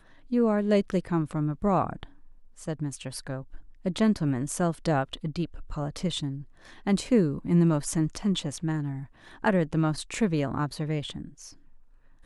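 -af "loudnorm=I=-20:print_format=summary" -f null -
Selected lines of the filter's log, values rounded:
Input Integrated:    -28.1 LUFS
Input True Peak:     -11.2 dBTP
Input LRA:             2.9 LU
Input Threshold:     -38.9 LUFS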